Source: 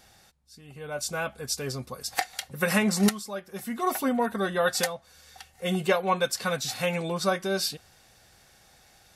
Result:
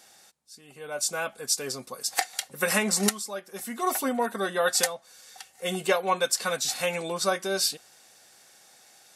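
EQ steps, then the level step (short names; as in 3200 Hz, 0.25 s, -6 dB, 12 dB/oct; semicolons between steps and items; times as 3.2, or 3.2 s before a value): HPF 260 Hz 12 dB/oct; bell 8200 Hz +7 dB 1.2 oct; 0.0 dB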